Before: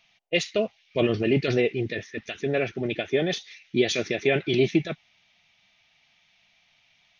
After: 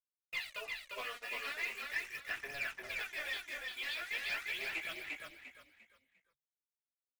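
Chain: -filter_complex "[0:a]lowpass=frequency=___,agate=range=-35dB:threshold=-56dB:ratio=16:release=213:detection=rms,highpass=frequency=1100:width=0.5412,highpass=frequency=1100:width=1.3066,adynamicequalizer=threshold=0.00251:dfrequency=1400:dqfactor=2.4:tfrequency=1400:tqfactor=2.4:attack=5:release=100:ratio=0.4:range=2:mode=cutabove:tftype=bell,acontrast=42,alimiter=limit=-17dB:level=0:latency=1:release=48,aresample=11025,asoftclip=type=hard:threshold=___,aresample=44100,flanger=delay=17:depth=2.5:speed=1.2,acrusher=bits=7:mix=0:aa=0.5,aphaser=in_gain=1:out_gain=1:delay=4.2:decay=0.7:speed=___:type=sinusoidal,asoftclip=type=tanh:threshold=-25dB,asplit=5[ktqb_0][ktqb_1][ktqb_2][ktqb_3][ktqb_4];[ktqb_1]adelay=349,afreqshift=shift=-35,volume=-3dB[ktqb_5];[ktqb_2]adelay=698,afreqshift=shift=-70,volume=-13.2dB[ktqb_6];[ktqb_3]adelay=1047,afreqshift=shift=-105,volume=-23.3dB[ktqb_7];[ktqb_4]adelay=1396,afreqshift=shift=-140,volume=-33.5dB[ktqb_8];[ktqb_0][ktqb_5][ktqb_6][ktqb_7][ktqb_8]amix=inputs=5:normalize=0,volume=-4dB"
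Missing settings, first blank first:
1800, -31dB, 0.42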